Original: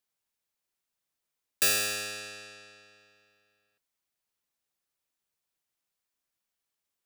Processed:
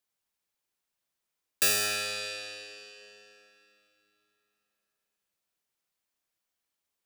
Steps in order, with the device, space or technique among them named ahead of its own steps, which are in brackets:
filtered reverb send (on a send: high-pass filter 230 Hz 12 dB per octave + low-pass filter 5,400 Hz 12 dB per octave + convolution reverb RT60 3.3 s, pre-delay 44 ms, DRR 4 dB)

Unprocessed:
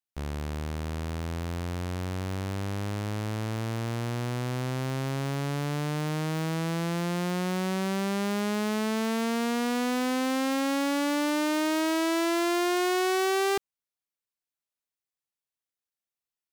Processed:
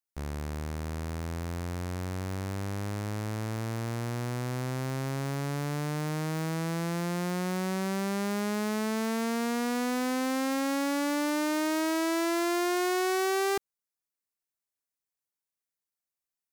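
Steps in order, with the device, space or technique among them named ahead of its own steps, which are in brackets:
exciter from parts (in parallel at −5 dB: high-pass filter 2,500 Hz 24 dB per octave + soft clipping −28.5 dBFS, distortion −13 dB + high-pass filter 2,100 Hz 6 dB per octave)
on the sum: level −2 dB

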